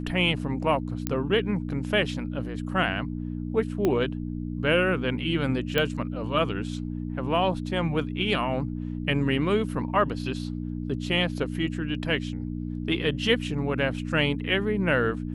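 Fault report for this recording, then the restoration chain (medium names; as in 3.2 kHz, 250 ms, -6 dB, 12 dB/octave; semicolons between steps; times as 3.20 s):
hum 60 Hz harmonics 5 -32 dBFS
1.07 s: pop -10 dBFS
3.85 s: pop -12 dBFS
5.78 s: pop -11 dBFS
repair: de-click; de-hum 60 Hz, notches 5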